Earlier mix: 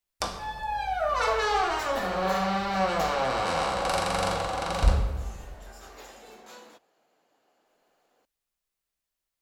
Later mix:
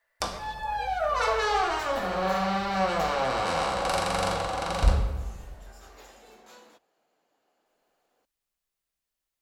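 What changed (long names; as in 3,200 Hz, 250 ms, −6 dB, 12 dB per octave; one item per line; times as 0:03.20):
speech: unmuted
second sound −4.0 dB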